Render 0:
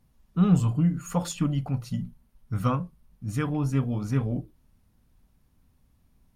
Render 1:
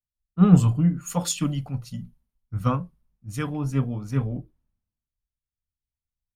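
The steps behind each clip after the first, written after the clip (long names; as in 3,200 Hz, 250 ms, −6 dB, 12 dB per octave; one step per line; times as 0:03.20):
multiband upward and downward expander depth 100%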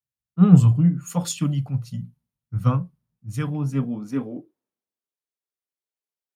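high-pass filter sweep 120 Hz → 390 Hz, 0:03.38–0:04.58
level −2 dB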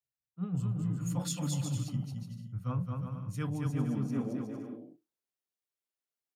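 reversed playback
downward compressor 12 to 1, threshold −26 dBFS, peak gain reduction 20.5 dB
reversed playback
bouncing-ball delay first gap 220 ms, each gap 0.65×, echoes 5
level −4.5 dB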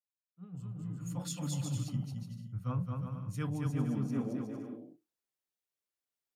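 fade in at the beginning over 1.87 s
level −1 dB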